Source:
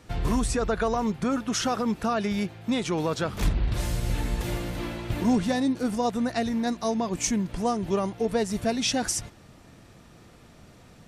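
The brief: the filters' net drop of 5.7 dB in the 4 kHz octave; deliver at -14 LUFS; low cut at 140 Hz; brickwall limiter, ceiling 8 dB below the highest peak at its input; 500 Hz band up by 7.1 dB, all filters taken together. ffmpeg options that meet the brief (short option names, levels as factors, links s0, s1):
-af "highpass=140,equalizer=f=500:t=o:g=8.5,equalizer=f=4000:t=o:g=-8,volume=4.47,alimiter=limit=0.668:level=0:latency=1"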